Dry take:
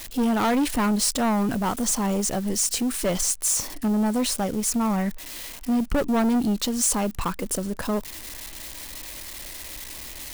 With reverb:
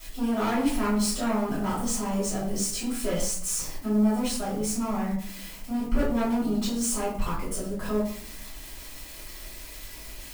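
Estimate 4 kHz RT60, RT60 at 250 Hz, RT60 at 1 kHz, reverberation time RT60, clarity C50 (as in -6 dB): 0.40 s, 1.0 s, 0.55 s, 0.55 s, 4.0 dB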